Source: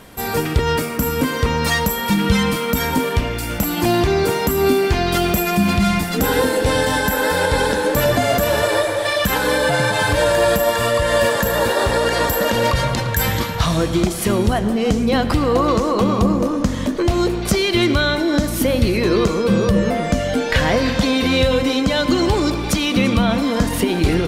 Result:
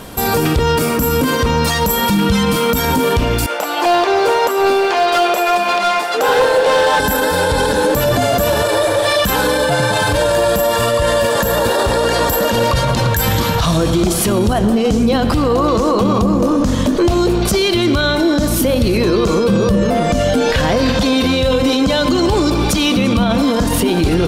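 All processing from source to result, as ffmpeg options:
ffmpeg -i in.wav -filter_complex "[0:a]asettb=1/sr,asplit=3[link_01][link_02][link_03];[link_01]atrim=end=3.464[link_04];[link_02]atrim=start=3.46:end=7,asetpts=PTS-STARTPTS,afade=type=in:duration=0.004:curve=qsin,afade=type=out:start_time=3.536:duration=0.004:curve=qsin,highpass=frequency=480:width=0.5412,highpass=frequency=480:width=1.3066,aemphasis=mode=reproduction:type=75fm,volume=18dB,asoftclip=hard,volume=-18dB[link_05];[link_03]atrim=start=6.996[link_06];[link_04][link_05]acrossfade=duration=0.004:curve1=hsin:curve2=qsin[link_07];[link_07][link_06]acrossfade=duration=0.004:curve1=qsin:curve2=hsin,equalizer=frequency=2000:width_type=o:width=0.54:gain=-6,alimiter=level_in=15.5dB:limit=-1dB:release=50:level=0:latency=1,volume=-5.5dB" out.wav

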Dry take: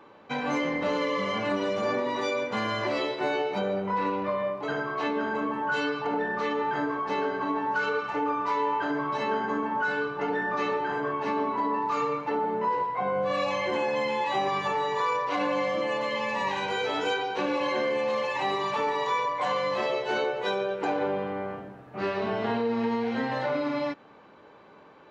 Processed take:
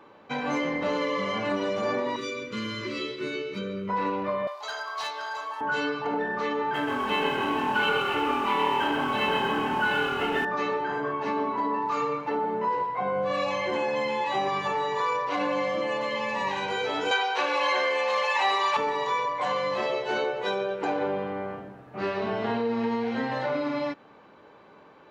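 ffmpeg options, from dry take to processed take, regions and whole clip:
ffmpeg -i in.wav -filter_complex "[0:a]asettb=1/sr,asplit=3[link_01][link_02][link_03];[link_01]atrim=end=2.164[link_04];[link_02]atrim=start=2.16:end=3.89,asetpts=PTS-STARTPTS,afade=type=in:duration=0.004:curve=qsin,afade=type=out:start_time=1.726:duration=0.004:curve=qsin,asuperstop=centerf=760:order=4:qfactor=0.88,equalizer=frequency=1700:width_type=o:width=0.4:gain=-8.5,asplit=2[link_05][link_06];[link_06]adelay=22,volume=-12dB[link_07];[link_05][link_07]amix=inputs=2:normalize=0,atrim=end_sample=76293[link_08];[link_03]atrim=start=3.886[link_09];[link_04][link_08]acrossfade=duration=0.004:curve1=hsin:curve2=qsin[link_10];[link_10][link_09]acrossfade=duration=0.004:curve1=qsin:curve2=hsin,asettb=1/sr,asplit=3[link_11][link_12][link_13];[link_11]atrim=end=4.474[link_14];[link_12]atrim=start=4.47:end=5.61,asetpts=PTS-STARTPTS,afade=type=in:duration=0.004:curve=qsin,afade=type=out:start_time=1.136:duration=0.004:curve=qsin,highpass=frequency=700:width=0.5412,highpass=frequency=700:width=1.3066,highshelf=frequency=3300:width_type=q:width=1.5:gain=10.5,asoftclip=type=hard:threshold=-26.5dB[link_15];[link_13]atrim=start=5.606[link_16];[link_14][link_15]acrossfade=duration=0.004:curve1=hsin:curve2=qsin[link_17];[link_17][link_16]acrossfade=duration=0.004:curve1=qsin:curve2=hsin,asettb=1/sr,asplit=3[link_18][link_19][link_20];[link_18]atrim=end=6.744[link_21];[link_19]atrim=start=6.74:end=10.45,asetpts=PTS-STARTPTS,afade=type=in:duration=0.004:curve=qsin,afade=type=out:start_time=3.706:duration=0.004:curve=qsin,lowpass=frequency=3000:width_type=q:width=5.3,aeval=exprs='sgn(val(0))*max(abs(val(0))-0.00422,0)':channel_layout=same,asplit=9[link_22][link_23][link_24][link_25][link_26][link_27][link_28][link_29][link_30];[link_23]adelay=128,afreqshift=-39,volume=-5dB[link_31];[link_24]adelay=256,afreqshift=-78,volume=-9.7dB[link_32];[link_25]adelay=384,afreqshift=-117,volume=-14.5dB[link_33];[link_26]adelay=512,afreqshift=-156,volume=-19.2dB[link_34];[link_27]adelay=640,afreqshift=-195,volume=-23.9dB[link_35];[link_28]adelay=768,afreqshift=-234,volume=-28.7dB[link_36];[link_29]adelay=896,afreqshift=-273,volume=-33.4dB[link_37];[link_30]adelay=1024,afreqshift=-312,volume=-38.1dB[link_38];[link_22][link_31][link_32][link_33][link_34][link_35][link_36][link_37][link_38]amix=inputs=9:normalize=0,atrim=end_sample=163611[link_39];[link_20]atrim=start=10.446[link_40];[link_21][link_39]acrossfade=duration=0.004:curve1=hsin:curve2=qsin[link_41];[link_41][link_40]acrossfade=duration=0.004:curve1=qsin:curve2=hsin,asettb=1/sr,asplit=3[link_42][link_43][link_44];[link_42]atrim=end=17.114[link_45];[link_43]atrim=start=17.11:end=18.77,asetpts=PTS-STARTPTS,afade=type=in:duration=0.004:curve=qsin,afade=type=out:start_time=1.656:duration=0.004:curve=qsin,acontrast=68,highpass=740[link_46];[link_44]atrim=start=18.766[link_47];[link_45][link_46]acrossfade=duration=0.004:curve1=hsin:curve2=qsin[link_48];[link_48][link_47]acrossfade=duration=0.004:curve1=qsin:curve2=hsin" out.wav

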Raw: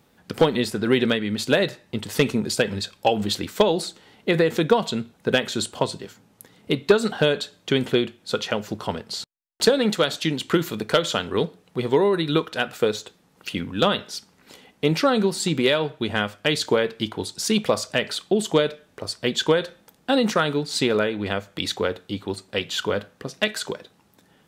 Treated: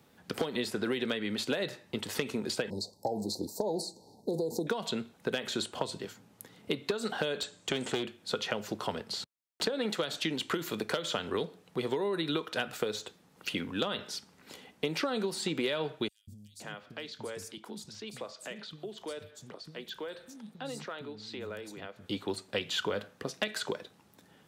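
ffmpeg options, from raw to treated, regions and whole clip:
ffmpeg -i in.wav -filter_complex "[0:a]asettb=1/sr,asplit=3[link_01][link_02][link_03];[link_01]atrim=end=2.704[link_04];[link_02]atrim=start=2.7:end=4.67,asetpts=PTS-STARTPTS,afade=type=in:duration=0.004:curve=qsin,afade=type=out:start_time=1.966:duration=0.004:curve=qsin,acompressor=threshold=-20dB:ratio=3:attack=3.2:release=140:knee=1:detection=peak,asuperstop=centerf=2000:order=20:qfactor=0.63[link_05];[link_03]atrim=start=4.666[link_06];[link_04][link_05]acrossfade=duration=0.004:curve1=hsin:curve2=qsin[link_07];[link_07][link_06]acrossfade=duration=0.004:curve1=qsin:curve2=hsin,asettb=1/sr,asplit=3[link_08][link_09][link_10];[link_08]atrim=end=7.424[link_11];[link_09]atrim=start=7.42:end=8.03,asetpts=PTS-STARTPTS,afade=type=in:duration=0.004:curve=qsin,afade=type=out:start_time=0.606:duration=0.004:curve=qsin,lowpass=frequency=7800:width_type=q:width=4.3,aeval=exprs='clip(val(0),-1,0.0668)':channel_layout=same[link_12];[link_10]atrim=start=8.026[link_13];[link_11][link_12]acrossfade=duration=0.004:curve1=hsin:curve2=qsin[link_14];[link_14][link_13]acrossfade=duration=0.004:curve1=qsin:curve2=hsin,asettb=1/sr,asplit=3[link_15][link_16][link_17];[link_15]atrim=end=16.084[link_18];[link_16]atrim=start=16.08:end=22.06,asetpts=PTS-STARTPTS,afade=type=in:duration=0.004:curve=qsin,afade=type=out:start_time=5.976:duration=0.004:curve=qsin,acompressor=threshold=-47dB:ratio=2:attack=3.2:release=140:knee=1:detection=peak,acrossover=split=230|5500[link_19][link_20][link_21];[link_19]adelay=190[link_22];[link_20]adelay=520[link_23];[link_22][link_23][link_21]amix=inputs=3:normalize=0,atrim=end_sample=263718[link_24];[link_17]atrim=start=22.056[link_25];[link_18][link_24]acrossfade=duration=0.004:curve1=hsin:curve2=qsin[link_26];[link_26][link_25]acrossfade=duration=0.004:curve1=qsin:curve2=hsin,acompressor=threshold=-20dB:ratio=6,highpass=62,acrossover=split=260|3700[link_27][link_28][link_29];[link_27]acompressor=threshold=-41dB:ratio=4[link_30];[link_28]acompressor=threshold=-27dB:ratio=4[link_31];[link_29]acompressor=threshold=-38dB:ratio=4[link_32];[link_30][link_31][link_32]amix=inputs=3:normalize=0,volume=-2.5dB" out.wav

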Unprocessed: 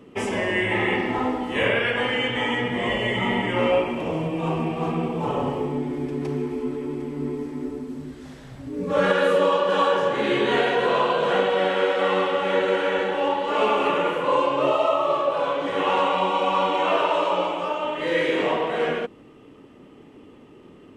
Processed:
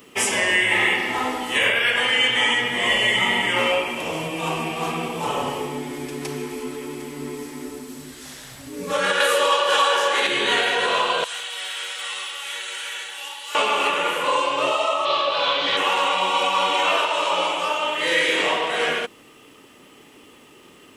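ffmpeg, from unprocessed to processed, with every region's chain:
ffmpeg -i in.wav -filter_complex "[0:a]asettb=1/sr,asplit=3[link_01][link_02][link_03];[link_01]atrim=end=9.204[link_04];[link_02]atrim=start=9.2:end=10.27,asetpts=PTS-STARTPTS,afade=type=in:duration=0.004:curve=qsin,afade=type=out:start_time=1.066:duration=0.004:curve=qsin,highpass=400,acontrast=70[link_05];[link_03]atrim=start=10.266[link_06];[link_04][link_05]acrossfade=duration=0.004:curve1=hsin:curve2=qsin[link_07];[link_07][link_06]acrossfade=duration=0.004:curve1=qsin:curve2=hsin,asettb=1/sr,asplit=3[link_08][link_09][link_10];[link_08]atrim=end=11.244[link_11];[link_09]atrim=start=11.24:end=13.55,asetpts=PTS-STARTPTS,afade=type=in:duration=0.004:curve=qsin,afade=type=out:start_time=2.306:duration=0.004:curve=qsin,aderivative,bandreject=frequency=540:width=10[link_12];[link_10]atrim=start=13.546[link_13];[link_11][link_12]acrossfade=duration=0.004:curve1=hsin:curve2=qsin[link_14];[link_14][link_13]acrossfade=duration=0.004:curve1=qsin:curve2=hsin,asettb=1/sr,asplit=3[link_15][link_16][link_17];[link_15]atrim=end=15.054[link_18];[link_16]atrim=start=15.05:end=15.77,asetpts=PTS-STARTPTS,afade=type=in:duration=0.004:curve=qsin,afade=type=out:start_time=0.716:duration=0.004:curve=qsin,lowpass=frequency=4100:width_type=q:width=3.2,asubboost=boost=5:cutoff=200[link_19];[link_17]atrim=start=15.766[link_20];[link_18][link_19]acrossfade=duration=0.004:curve1=hsin:curve2=qsin[link_21];[link_21][link_20]acrossfade=duration=0.004:curve1=qsin:curve2=hsin,aemphasis=mode=production:type=75kf,alimiter=limit=-12dB:level=0:latency=1:release=446,tiltshelf=frequency=650:gain=-6.5" out.wav

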